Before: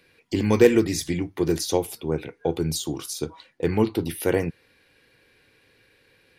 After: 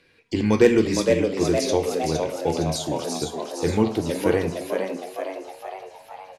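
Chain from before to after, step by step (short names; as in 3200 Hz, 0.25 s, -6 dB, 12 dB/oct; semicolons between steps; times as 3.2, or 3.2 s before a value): LPF 8600 Hz 12 dB/oct; frequency-shifting echo 0.462 s, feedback 57%, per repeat +93 Hz, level -5 dB; plate-style reverb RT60 0.63 s, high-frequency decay 0.9×, pre-delay 0 ms, DRR 9.5 dB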